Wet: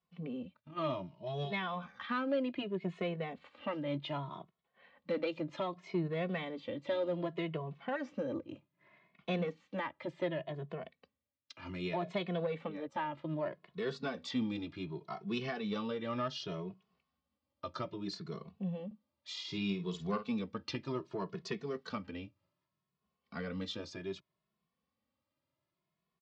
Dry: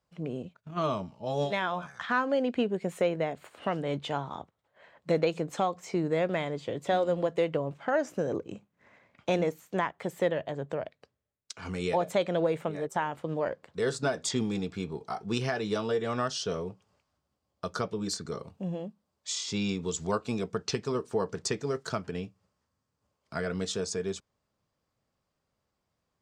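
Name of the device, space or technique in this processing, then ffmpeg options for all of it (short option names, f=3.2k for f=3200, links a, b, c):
barber-pole flanger into a guitar amplifier: -filter_complex "[0:a]asplit=2[a][b];[b]adelay=2.3,afreqshift=0.65[c];[a][c]amix=inputs=2:normalize=1,asoftclip=type=tanh:threshold=-21.5dB,highpass=100,equalizer=f=110:t=q:w=4:g=-6,equalizer=f=450:t=q:w=4:g=-8,equalizer=f=770:t=q:w=4:g=-7,equalizer=f=1.5k:t=q:w=4:g=-7,lowpass=f=4.1k:w=0.5412,lowpass=f=4.1k:w=1.3066,asettb=1/sr,asplit=3[d][e][f];[d]atrim=end=18.864[g];[e]atrim=start=18.86:end=20.31,asetpts=PTS-STARTPTS,afade=t=in:d=0.004:c=qsin,afade=t=out:st=1.446:d=0.004:c=qsin,asplit=2[h][i];[i]adelay=50,volume=-10.5dB[j];[h][j]amix=inputs=2:normalize=0,atrim=end_sample=63945[k];[f]atrim=start=20.306[l];[g][k]acrossfade=d=0.004:c1=hsin:c2=qsin[m];[m][l]acrossfade=d=0.004:c1=qsin:c2=hsin"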